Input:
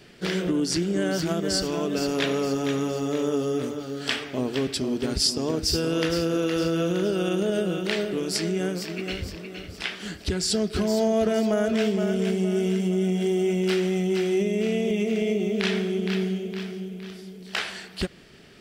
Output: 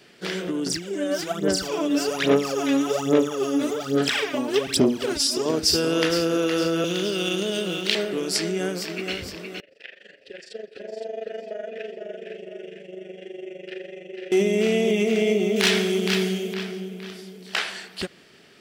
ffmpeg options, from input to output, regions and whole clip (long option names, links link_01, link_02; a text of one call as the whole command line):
ffmpeg -i in.wav -filter_complex "[0:a]asettb=1/sr,asplit=3[link_01][link_02][link_03];[link_01]atrim=end=0.664[link_04];[link_02]atrim=start=0.66:end=5.46,asetpts=PTS-STARTPTS,afade=type=in:duration=0.004:curve=qsin,afade=type=out:start_time=4.796:duration=0.004:curve=qsin,bandreject=frequency=4400:width=12,acompressor=threshold=-26dB:ratio=5:attack=3.2:release=140:knee=1:detection=peak,aphaser=in_gain=1:out_gain=1:delay=3.6:decay=0.76:speed=1.2:type=sinusoidal[link_05];[link_03]atrim=start=5.456[link_06];[link_04][link_05]acrossfade=duration=0.004:curve1=hsin:curve2=qsin[link_07];[link_07][link_06]acrossfade=duration=0.004:curve1=qsin:curve2=hsin,asettb=1/sr,asplit=3[link_08][link_09][link_10];[link_08]atrim=end=6.844[link_11];[link_09]atrim=start=6.84:end=7.95,asetpts=PTS-STARTPTS,afade=type=in:duration=0.004:curve=qsin,afade=type=out:start_time=1.106:duration=0.004:curve=qsin,equalizer=frequency=3200:width=0.64:gain=10,acrossover=split=440|3000[link_12][link_13][link_14];[link_13]acompressor=threshold=-37dB:ratio=3:attack=3.2:release=140:knee=2.83:detection=peak[link_15];[link_12][link_15][link_14]amix=inputs=3:normalize=0,aeval=exprs='sgn(val(0))*max(abs(val(0))-0.00668,0)':channel_layout=same[link_16];[link_10]atrim=start=7.946[link_17];[link_11][link_16]acrossfade=duration=0.004:curve1=hsin:curve2=qsin[link_18];[link_18][link_17]acrossfade=duration=0.004:curve1=qsin:curve2=hsin,asettb=1/sr,asplit=3[link_19][link_20][link_21];[link_19]atrim=end=9.604[link_22];[link_20]atrim=start=9.6:end=14.32,asetpts=PTS-STARTPTS,afade=type=in:duration=0.004:curve=qsin,afade=type=out:start_time=4.716:duration=0.004:curve=qsin,asplit=3[link_23][link_24][link_25];[link_23]bandpass=frequency=530:width_type=q:width=8,volume=0dB[link_26];[link_24]bandpass=frequency=1840:width_type=q:width=8,volume=-6dB[link_27];[link_25]bandpass=frequency=2480:width_type=q:width=8,volume=-9dB[link_28];[link_26][link_27][link_28]amix=inputs=3:normalize=0,tremolo=f=24:d=0.857,aecho=1:1:513:0.473,atrim=end_sample=208152[link_29];[link_21]atrim=start=14.316[link_30];[link_22][link_29]acrossfade=duration=0.004:curve1=hsin:curve2=qsin[link_31];[link_31][link_30]acrossfade=duration=0.004:curve1=qsin:curve2=hsin,asettb=1/sr,asplit=3[link_32][link_33][link_34];[link_32]atrim=end=15.564[link_35];[link_33]atrim=start=15.56:end=16.54,asetpts=PTS-STARTPTS,afade=type=in:duration=0.004:curve=qsin,afade=type=out:start_time=0.976:duration=0.004:curve=qsin,highshelf=frequency=3600:gain=9.5,volume=18dB,asoftclip=hard,volume=-18dB[link_36];[link_34]atrim=start=16.536[link_37];[link_35][link_36]acrossfade=duration=0.004:curve1=hsin:curve2=qsin[link_38];[link_38][link_37]acrossfade=duration=0.004:curve1=qsin:curve2=hsin,dynaudnorm=framelen=310:gausssize=11:maxgain=6.5dB,highpass=frequency=310:poles=1" out.wav